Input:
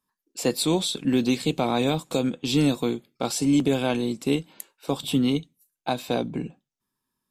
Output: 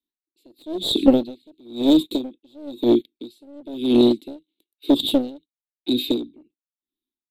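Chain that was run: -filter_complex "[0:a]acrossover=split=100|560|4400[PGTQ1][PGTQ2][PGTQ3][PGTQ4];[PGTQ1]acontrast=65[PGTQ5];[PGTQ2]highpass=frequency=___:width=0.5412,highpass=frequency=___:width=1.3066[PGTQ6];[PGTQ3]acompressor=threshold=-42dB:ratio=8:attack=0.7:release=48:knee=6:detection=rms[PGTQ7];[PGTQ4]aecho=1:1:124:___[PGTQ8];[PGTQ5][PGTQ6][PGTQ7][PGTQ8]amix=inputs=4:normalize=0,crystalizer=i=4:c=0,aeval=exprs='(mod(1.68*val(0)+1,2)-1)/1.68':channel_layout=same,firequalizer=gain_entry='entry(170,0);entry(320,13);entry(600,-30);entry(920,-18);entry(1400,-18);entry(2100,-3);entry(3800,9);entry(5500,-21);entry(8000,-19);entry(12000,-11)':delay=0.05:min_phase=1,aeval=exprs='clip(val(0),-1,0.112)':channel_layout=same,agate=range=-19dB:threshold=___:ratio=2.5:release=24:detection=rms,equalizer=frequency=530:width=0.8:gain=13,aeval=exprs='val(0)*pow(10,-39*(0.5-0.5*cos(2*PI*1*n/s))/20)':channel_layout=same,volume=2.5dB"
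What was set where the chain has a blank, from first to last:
170, 170, 0.106, -45dB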